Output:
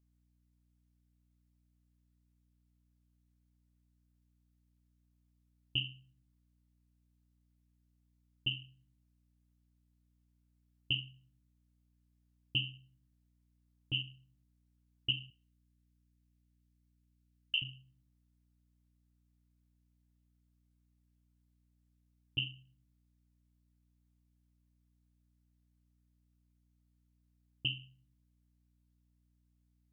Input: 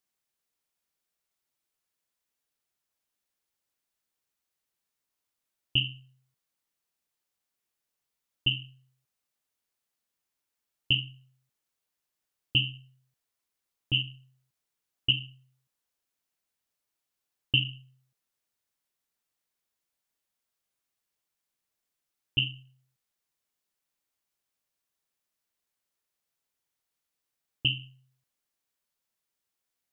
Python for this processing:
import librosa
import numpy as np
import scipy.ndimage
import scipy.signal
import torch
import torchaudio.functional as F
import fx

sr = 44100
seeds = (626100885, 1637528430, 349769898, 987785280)

y = fx.highpass(x, sr, hz=1400.0, slope=24, at=(15.3, 17.62))
y = fx.add_hum(y, sr, base_hz=60, snr_db=25)
y = y * 10.0 ** (-8.5 / 20.0)